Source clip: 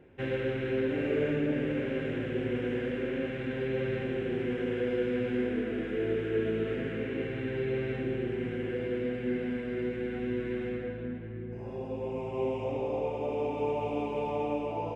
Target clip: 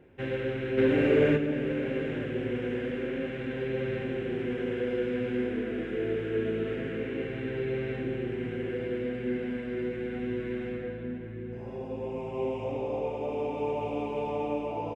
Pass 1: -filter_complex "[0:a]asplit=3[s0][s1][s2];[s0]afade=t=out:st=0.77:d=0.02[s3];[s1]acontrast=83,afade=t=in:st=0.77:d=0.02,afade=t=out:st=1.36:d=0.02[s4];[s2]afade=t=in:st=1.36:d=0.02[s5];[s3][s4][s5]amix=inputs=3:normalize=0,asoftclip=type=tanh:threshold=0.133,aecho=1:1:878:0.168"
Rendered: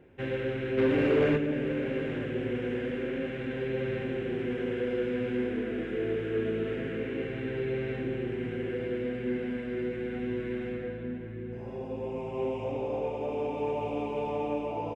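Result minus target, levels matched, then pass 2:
saturation: distortion +13 dB
-filter_complex "[0:a]asplit=3[s0][s1][s2];[s0]afade=t=out:st=0.77:d=0.02[s3];[s1]acontrast=83,afade=t=in:st=0.77:d=0.02,afade=t=out:st=1.36:d=0.02[s4];[s2]afade=t=in:st=1.36:d=0.02[s5];[s3][s4][s5]amix=inputs=3:normalize=0,asoftclip=type=tanh:threshold=0.335,aecho=1:1:878:0.168"

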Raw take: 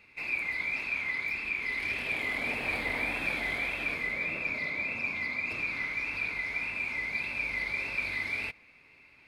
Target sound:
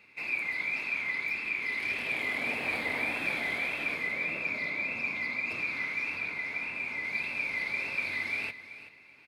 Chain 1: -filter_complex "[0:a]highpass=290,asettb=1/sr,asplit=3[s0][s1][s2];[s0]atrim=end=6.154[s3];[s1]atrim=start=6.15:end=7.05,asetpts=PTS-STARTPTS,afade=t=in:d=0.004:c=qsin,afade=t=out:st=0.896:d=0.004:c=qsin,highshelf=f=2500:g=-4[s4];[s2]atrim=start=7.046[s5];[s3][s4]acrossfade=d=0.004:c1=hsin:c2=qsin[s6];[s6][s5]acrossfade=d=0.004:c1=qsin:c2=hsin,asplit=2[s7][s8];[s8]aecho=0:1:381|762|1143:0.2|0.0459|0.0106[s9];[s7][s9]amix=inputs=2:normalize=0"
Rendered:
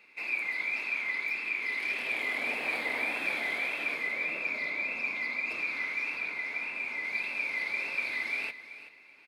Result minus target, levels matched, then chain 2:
125 Hz band -10.5 dB
-filter_complex "[0:a]highpass=120,asettb=1/sr,asplit=3[s0][s1][s2];[s0]atrim=end=6.154[s3];[s1]atrim=start=6.15:end=7.05,asetpts=PTS-STARTPTS,afade=t=in:d=0.004:c=qsin,afade=t=out:st=0.896:d=0.004:c=qsin,highshelf=f=2500:g=-4[s4];[s2]atrim=start=7.046[s5];[s3][s4]acrossfade=d=0.004:c1=hsin:c2=qsin[s6];[s6][s5]acrossfade=d=0.004:c1=qsin:c2=hsin,asplit=2[s7][s8];[s8]aecho=0:1:381|762|1143:0.2|0.0459|0.0106[s9];[s7][s9]amix=inputs=2:normalize=0"

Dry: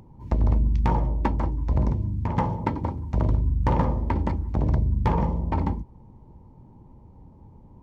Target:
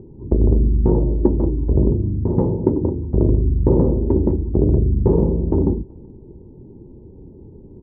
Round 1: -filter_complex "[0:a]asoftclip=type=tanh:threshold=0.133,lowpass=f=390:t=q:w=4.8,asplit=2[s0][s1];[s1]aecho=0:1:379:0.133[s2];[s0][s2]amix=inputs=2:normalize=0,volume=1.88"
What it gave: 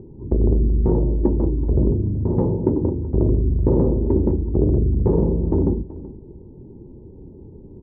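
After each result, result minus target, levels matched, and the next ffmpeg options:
saturation: distortion +15 dB; echo-to-direct +11.5 dB
-filter_complex "[0:a]asoftclip=type=tanh:threshold=0.376,lowpass=f=390:t=q:w=4.8,asplit=2[s0][s1];[s1]aecho=0:1:379:0.133[s2];[s0][s2]amix=inputs=2:normalize=0,volume=1.88"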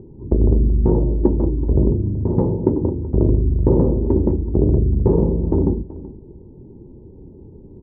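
echo-to-direct +11.5 dB
-filter_complex "[0:a]asoftclip=type=tanh:threshold=0.376,lowpass=f=390:t=q:w=4.8,asplit=2[s0][s1];[s1]aecho=0:1:379:0.0355[s2];[s0][s2]amix=inputs=2:normalize=0,volume=1.88"

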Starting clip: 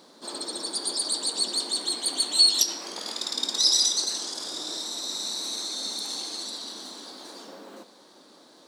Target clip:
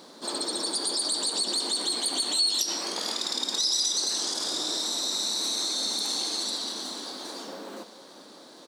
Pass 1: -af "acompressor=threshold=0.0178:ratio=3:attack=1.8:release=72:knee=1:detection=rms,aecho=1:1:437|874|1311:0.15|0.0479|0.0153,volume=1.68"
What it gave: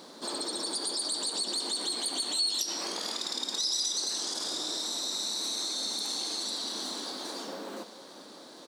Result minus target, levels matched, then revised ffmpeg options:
compression: peak gain reduction +4.5 dB
-af "acompressor=threshold=0.0376:ratio=3:attack=1.8:release=72:knee=1:detection=rms,aecho=1:1:437|874|1311:0.15|0.0479|0.0153,volume=1.68"

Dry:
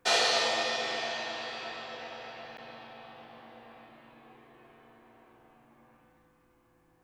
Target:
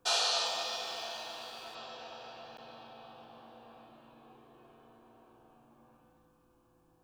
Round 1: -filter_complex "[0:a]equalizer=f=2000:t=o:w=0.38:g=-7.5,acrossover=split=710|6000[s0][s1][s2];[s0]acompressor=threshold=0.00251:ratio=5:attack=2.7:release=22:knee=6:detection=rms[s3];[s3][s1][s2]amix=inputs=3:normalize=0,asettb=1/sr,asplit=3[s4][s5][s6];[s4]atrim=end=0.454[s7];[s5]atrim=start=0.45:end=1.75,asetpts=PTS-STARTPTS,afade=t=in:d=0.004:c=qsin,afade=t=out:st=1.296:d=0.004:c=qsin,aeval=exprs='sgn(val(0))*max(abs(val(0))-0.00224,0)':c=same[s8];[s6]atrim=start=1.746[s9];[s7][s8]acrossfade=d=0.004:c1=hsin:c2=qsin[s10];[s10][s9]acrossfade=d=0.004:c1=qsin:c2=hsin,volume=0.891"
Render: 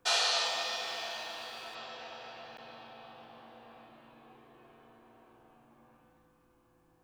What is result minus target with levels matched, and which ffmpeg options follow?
2 kHz band +3.5 dB
-filter_complex "[0:a]equalizer=f=2000:t=o:w=0.38:g=-19,acrossover=split=710|6000[s0][s1][s2];[s0]acompressor=threshold=0.00251:ratio=5:attack=2.7:release=22:knee=6:detection=rms[s3];[s3][s1][s2]amix=inputs=3:normalize=0,asettb=1/sr,asplit=3[s4][s5][s6];[s4]atrim=end=0.454[s7];[s5]atrim=start=0.45:end=1.75,asetpts=PTS-STARTPTS,afade=t=in:d=0.004:c=qsin,afade=t=out:st=1.296:d=0.004:c=qsin,aeval=exprs='sgn(val(0))*max(abs(val(0))-0.00224,0)':c=same[s8];[s6]atrim=start=1.746[s9];[s7][s8]acrossfade=d=0.004:c1=hsin:c2=qsin[s10];[s10][s9]acrossfade=d=0.004:c1=qsin:c2=hsin,volume=0.891"

